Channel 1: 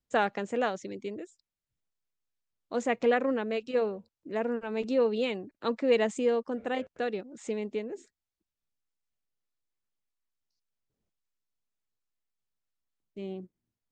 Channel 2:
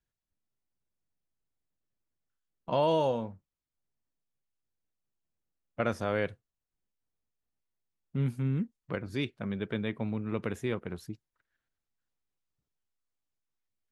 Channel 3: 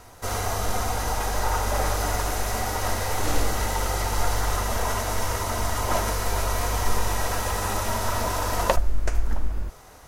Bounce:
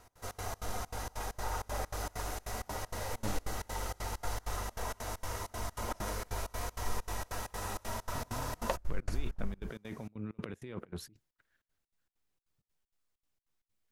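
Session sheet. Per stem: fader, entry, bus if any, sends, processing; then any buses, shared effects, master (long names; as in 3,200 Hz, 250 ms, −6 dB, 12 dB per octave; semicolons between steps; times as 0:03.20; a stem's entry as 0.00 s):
muted
−3.0 dB, 0.00 s, no send, compressor whose output falls as the input rises −40 dBFS, ratio −1
−12.0 dB, 0.00 s, no send, no processing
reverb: not used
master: gate pattern "x.xx.xx.xx" 195 BPM −24 dB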